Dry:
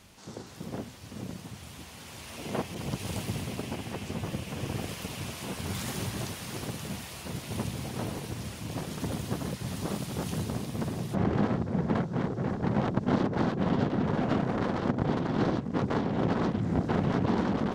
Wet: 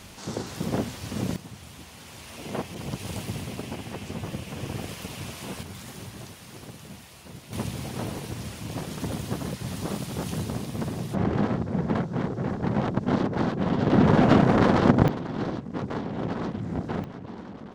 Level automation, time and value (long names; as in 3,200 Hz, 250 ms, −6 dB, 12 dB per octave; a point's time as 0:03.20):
+10 dB
from 0:01.36 +0.5 dB
from 0:05.63 −6.5 dB
from 0:07.53 +2 dB
from 0:13.87 +10 dB
from 0:15.08 −2.5 dB
from 0:17.04 −12.5 dB